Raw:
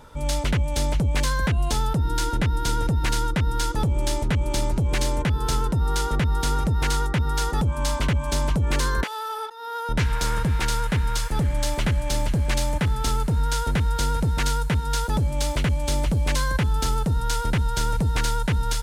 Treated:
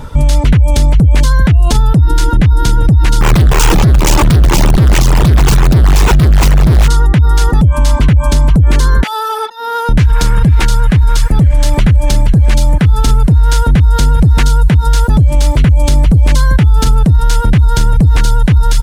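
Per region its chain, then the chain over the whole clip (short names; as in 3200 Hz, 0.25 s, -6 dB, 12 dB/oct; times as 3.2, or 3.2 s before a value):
3.21–6.88 infinite clipping + ripple EQ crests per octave 0.72, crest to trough 7 dB + Doppler distortion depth 0.75 ms
whole clip: reverb removal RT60 0.56 s; tone controls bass +10 dB, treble -1 dB; maximiser +16 dB; gain -1 dB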